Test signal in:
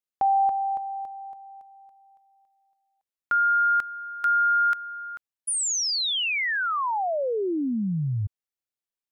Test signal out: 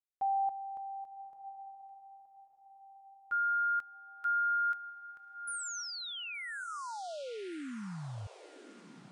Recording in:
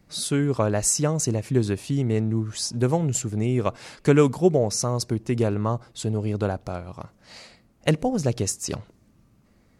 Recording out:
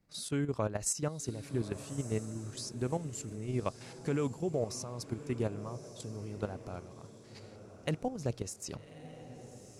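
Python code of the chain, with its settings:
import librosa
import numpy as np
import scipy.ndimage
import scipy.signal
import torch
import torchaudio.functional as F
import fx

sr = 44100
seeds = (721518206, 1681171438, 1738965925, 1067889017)

y = fx.level_steps(x, sr, step_db=11)
y = fx.echo_diffused(y, sr, ms=1175, feedback_pct=40, wet_db=-13)
y = y * librosa.db_to_amplitude(-8.5)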